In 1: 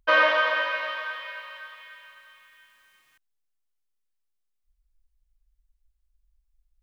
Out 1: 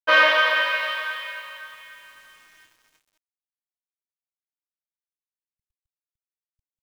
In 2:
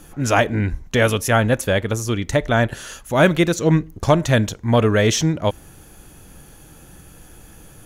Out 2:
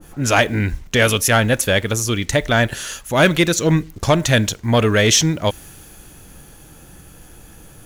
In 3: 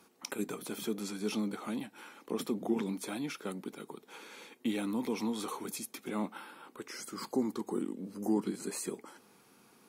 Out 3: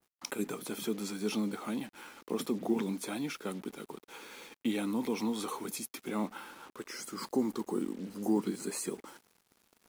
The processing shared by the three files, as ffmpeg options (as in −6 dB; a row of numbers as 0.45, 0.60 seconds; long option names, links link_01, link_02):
-filter_complex "[0:a]asplit=2[link_01][link_02];[link_02]acontrast=60,volume=2dB[link_03];[link_01][link_03]amix=inputs=2:normalize=0,acrusher=bits=6:mix=0:aa=0.5,adynamicequalizer=threshold=0.0631:dfrequency=1600:dqfactor=0.7:tfrequency=1600:tqfactor=0.7:attack=5:release=100:ratio=0.375:range=3.5:mode=boostabove:tftype=highshelf,volume=-10dB"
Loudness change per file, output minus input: +4.5, +2.0, +1.0 LU